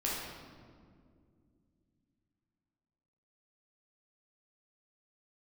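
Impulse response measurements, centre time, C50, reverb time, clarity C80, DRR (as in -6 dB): 96 ms, -1.0 dB, 2.2 s, 1.5 dB, -6.0 dB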